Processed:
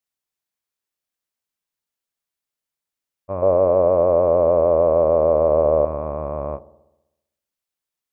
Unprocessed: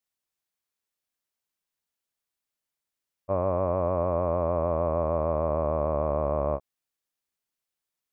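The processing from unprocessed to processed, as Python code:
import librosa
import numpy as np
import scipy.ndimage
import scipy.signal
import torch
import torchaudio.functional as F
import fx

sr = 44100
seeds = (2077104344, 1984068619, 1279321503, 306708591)

y = fx.peak_eq(x, sr, hz=500.0, db=13.5, octaves=1.2, at=(3.42, 5.85))
y = fx.echo_wet_lowpass(y, sr, ms=64, feedback_pct=62, hz=910.0, wet_db=-17)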